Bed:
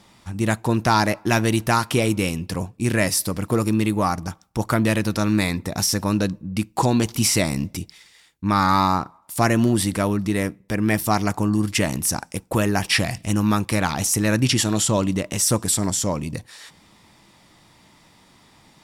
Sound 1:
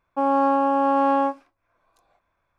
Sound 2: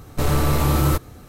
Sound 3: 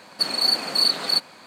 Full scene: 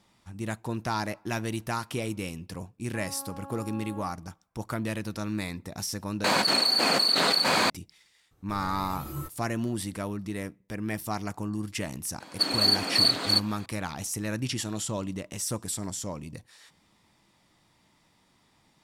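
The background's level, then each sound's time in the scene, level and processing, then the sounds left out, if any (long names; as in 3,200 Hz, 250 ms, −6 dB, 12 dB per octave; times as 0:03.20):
bed −12 dB
0:02.77: mix in 1 −16.5 dB + brickwall limiter −19 dBFS
0:06.24: overwrite with 3 −6.5 dB + envelope flattener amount 100%
0:08.31: mix in 2 −11.5 dB + noise reduction from a noise print of the clip's start 12 dB
0:12.20: mix in 3 −2.5 dB + hollow resonant body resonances 290/3,300 Hz, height 9 dB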